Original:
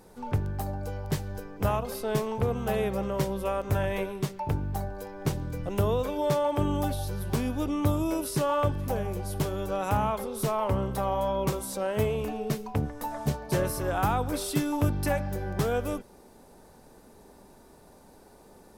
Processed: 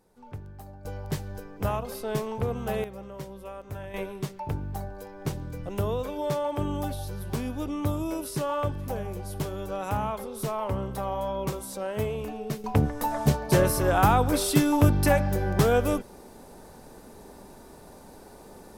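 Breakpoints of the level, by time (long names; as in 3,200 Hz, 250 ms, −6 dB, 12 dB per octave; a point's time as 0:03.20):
−12 dB
from 0:00.85 −1.5 dB
from 0:02.84 −11 dB
from 0:03.94 −2.5 dB
from 0:12.64 +6 dB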